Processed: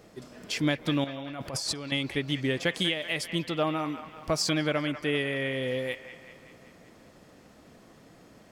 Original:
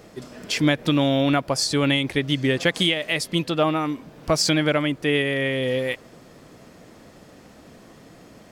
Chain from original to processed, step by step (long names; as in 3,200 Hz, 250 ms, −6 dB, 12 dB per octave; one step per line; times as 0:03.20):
0:01.04–0:01.92: compressor whose output falls as the input rises −29 dBFS, ratio −1
delay with a band-pass on its return 192 ms, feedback 60%, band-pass 1,400 Hz, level −10 dB
level −7 dB